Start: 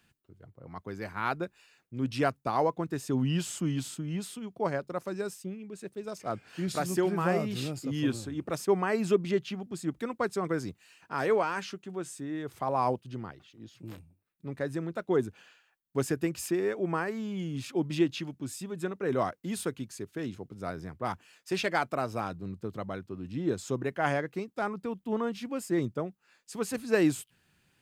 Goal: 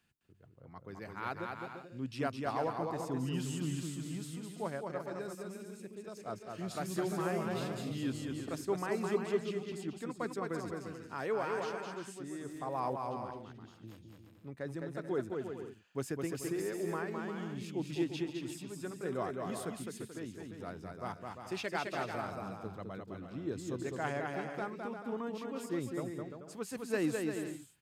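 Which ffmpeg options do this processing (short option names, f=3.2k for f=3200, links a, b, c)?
-af "aecho=1:1:210|346.5|435.2|492.9|530.4:0.631|0.398|0.251|0.158|0.1,volume=-8.5dB"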